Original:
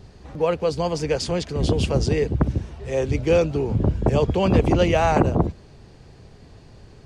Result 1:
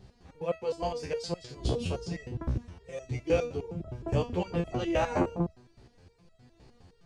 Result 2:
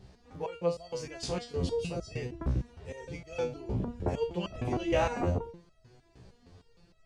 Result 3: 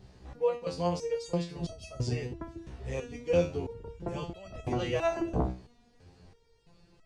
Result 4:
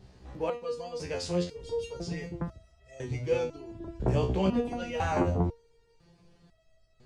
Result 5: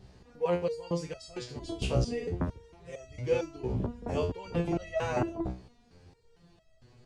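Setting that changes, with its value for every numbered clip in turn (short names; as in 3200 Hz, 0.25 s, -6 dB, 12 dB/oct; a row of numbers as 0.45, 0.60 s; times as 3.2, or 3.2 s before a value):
stepped resonator, rate: 9.7, 6.5, 3, 2, 4.4 Hz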